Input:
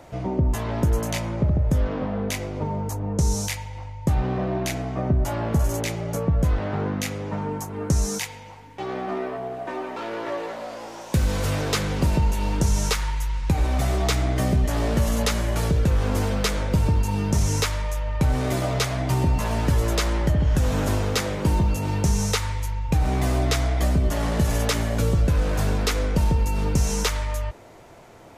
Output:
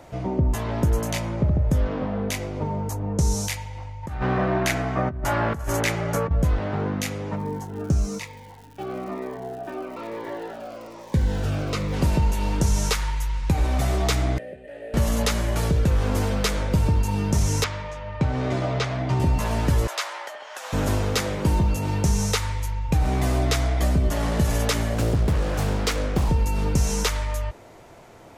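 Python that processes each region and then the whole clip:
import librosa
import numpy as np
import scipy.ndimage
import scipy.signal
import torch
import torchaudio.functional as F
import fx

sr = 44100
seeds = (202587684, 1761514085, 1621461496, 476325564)

y = fx.chain(x, sr, fx.peak_eq(hz=1500.0, db=9.5, octaves=1.4),
    fx.over_compress(threshold_db=-23.0, ratio=-0.5), at=(4.03, 6.31))
y = fx.lowpass(y, sr, hz=2200.0, slope=6, at=(7.35, 11.92), fade=0.02)
y = fx.dmg_crackle(y, sr, seeds[0], per_s=210.0, level_db=-39.0, at=(7.35, 11.92), fade=0.02)
y = fx.notch_cascade(y, sr, direction='falling', hz=1.1, at=(7.35, 11.92), fade=0.02)
y = fx.chain(y, sr, fx.vowel_filter(vowel='e'),
    fx.resample_bad(factor=4, down='filtered', up='hold'),
    fx.air_absorb(metres=110.0), at=(14.38, 14.94))
y = fx.chain(y, sr, fx.highpass(hz=73.0, slope=24),
    fx.air_absorb(metres=130.0), at=(17.64, 19.2))
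y = fx.chain(y, sr, fx.highpass(hz=700.0, slope=24),
    fx.high_shelf(hz=6800.0, db=-6.5), at=(19.87, 20.73))
y = fx.chain(y, sr, fx.highpass(hz=49.0, slope=12),
    fx.doppler_dist(depth_ms=0.91), at=(24.94, 26.29))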